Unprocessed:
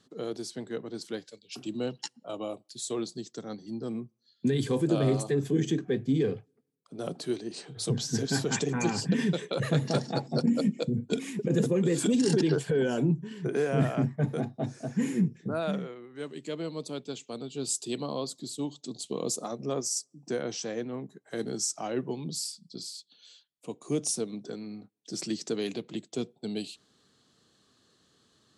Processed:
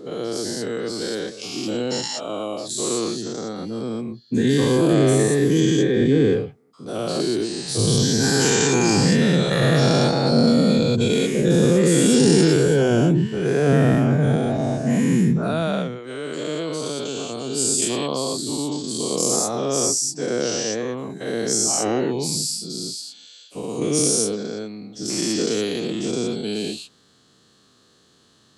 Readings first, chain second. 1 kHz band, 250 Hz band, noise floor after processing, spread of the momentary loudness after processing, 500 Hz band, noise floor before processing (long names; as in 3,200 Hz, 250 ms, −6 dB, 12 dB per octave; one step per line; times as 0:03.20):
+11.0 dB, +10.0 dB, −57 dBFS, 12 LU, +10.5 dB, −71 dBFS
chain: every bin's largest magnitude spread in time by 240 ms
level +3.5 dB